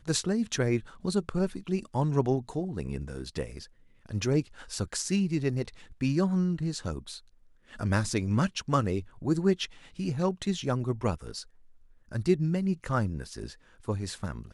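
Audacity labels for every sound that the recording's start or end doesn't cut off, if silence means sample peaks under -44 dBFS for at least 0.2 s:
4.060000	7.190000	sound
7.710000	11.430000	sound
12.110000	13.540000	sound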